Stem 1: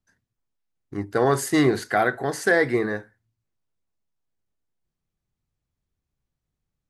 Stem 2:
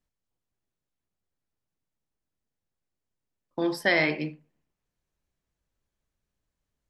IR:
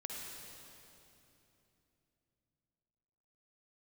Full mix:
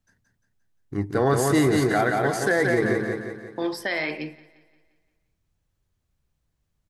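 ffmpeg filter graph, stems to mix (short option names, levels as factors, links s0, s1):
-filter_complex "[0:a]lowshelf=f=180:g=7,volume=1,asplit=2[s0][s1];[s1]volume=0.562[s2];[1:a]highpass=f=290:p=1,alimiter=limit=0.126:level=0:latency=1:release=207,volume=1.26,asplit=2[s3][s4];[s4]volume=0.0841[s5];[s2][s5]amix=inputs=2:normalize=0,aecho=0:1:175|350|525|700|875|1050|1225:1|0.49|0.24|0.118|0.0576|0.0282|0.0138[s6];[s0][s3][s6]amix=inputs=3:normalize=0,alimiter=limit=0.282:level=0:latency=1:release=85"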